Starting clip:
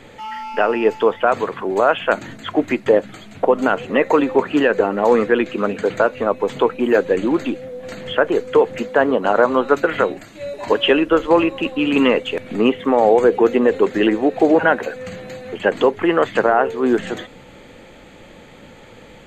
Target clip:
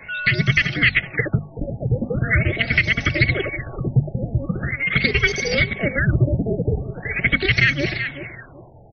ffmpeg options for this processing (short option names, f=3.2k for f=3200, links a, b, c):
-filter_complex "[0:a]afftfilt=real='real(if(between(b,1,1008),(2*floor((b-1)/24)+1)*24-b,b),0)':imag='imag(if(between(b,1,1008),(2*floor((b-1)/24)+1)*24-b,b),0)*if(between(b,1,1008),-1,1)':win_size=2048:overlap=0.75,asetrate=95256,aresample=44100,equalizer=f=125:t=o:w=1:g=7,equalizer=f=250:t=o:w=1:g=-5,equalizer=f=500:t=o:w=1:g=-5,equalizer=f=1k:t=o:w=1:g=-12,equalizer=f=2k:t=o:w=1:g=7,equalizer=f=4k:t=o:w=1:g=-4,asplit=2[a][b];[b]acompressor=threshold=-25dB:ratio=12,volume=-0.5dB[c];[a][c]amix=inputs=2:normalize=0,lowshelf=f=210:g=-5.5,asplit=2[d][e];[e]aecho=0:1:377|754|1131:0.251|0.0829|0.0274[f];[d][f]amix=inputs=2:normalize=0,acrusher=bits=7:mix=0:aa=0.000001,bandreject=f=50:t=h:w=6,bandreject=f=100:t=h:w=6,bandreject=f=150:t=h:w=6,bandreject=f=200:t=h:w=6,bandreject=f=250:t=h:w=6,acrossover=split=310|3000[g][h][i];[h]acompressor=threshold=-17dB:ratio=2[j];[g][j][i]amix=inputs=3:normalize=0,afftfilt=real='re*lt(b*sr/1024,870*pow(6400/870,0.5+0.5*sin(2*PI*0.42*pts/sr)))':imag='im*lt(b*sr/1024,870*pow(6400/870,0.5+0.5*sin(2*PI*0.42*pts/sr)))':win_size=1024:overlap=0.75,volume=-1dB"